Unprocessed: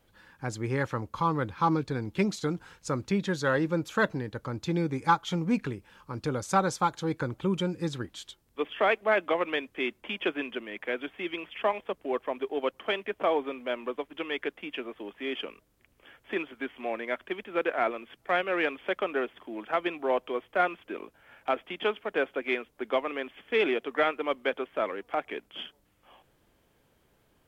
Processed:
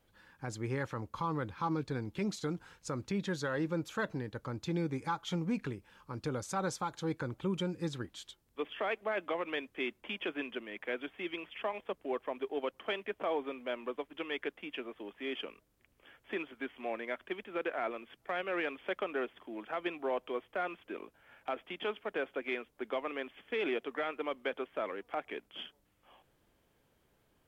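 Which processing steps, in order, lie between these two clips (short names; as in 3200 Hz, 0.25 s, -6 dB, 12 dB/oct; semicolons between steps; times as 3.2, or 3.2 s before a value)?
limiter -20 dBFS, peak gain reduction 8 dB; gain -5 dB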